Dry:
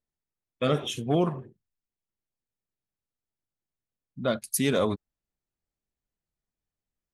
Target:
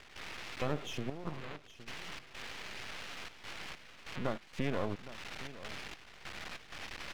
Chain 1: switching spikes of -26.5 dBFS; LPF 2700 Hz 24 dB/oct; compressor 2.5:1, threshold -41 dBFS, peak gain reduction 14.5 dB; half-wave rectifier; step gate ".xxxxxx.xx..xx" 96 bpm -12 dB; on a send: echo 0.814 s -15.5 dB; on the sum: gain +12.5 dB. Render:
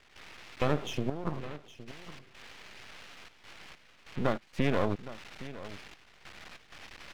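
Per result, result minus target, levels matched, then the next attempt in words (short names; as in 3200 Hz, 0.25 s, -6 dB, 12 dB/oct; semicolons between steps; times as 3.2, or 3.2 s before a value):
compressor: peak gain reduction -6.5 dB; switching spikes: distortion -9 dB
switching spikes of -26.5 dBFS; LPF 2700 Hz 24 dB/oct; compressor 2.5:1, threshold -52 dBFS, peak gain reduction 21 dB; half-wave rectifier; step gate ".xxxxxx.xx..xx" 96 bpm -12 dB; on a send: echo 0.814 s -15.5 dB; on the sum: gain +12.5 dB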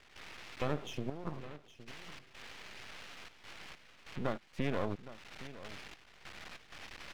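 switching spikes: distortion -9 dB
switching spikes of -17.5 dBFS; LPF 2700 Hz 24 dB/oct; compressor 2.5:1, threshold -52 dBFS, peak gain reduction 21 dB; half-wave rectifier; step gate ".xxxxxx.xx..xx" 96 bpm -12 dB; on a send: echo 0.814 s -15.5 dB; on the sum: gain +12.5 dB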